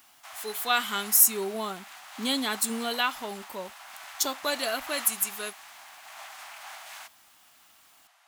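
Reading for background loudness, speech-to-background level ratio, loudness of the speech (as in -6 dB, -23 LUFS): -42.5 LUFS, 16.5 dB, -26.0 LUFS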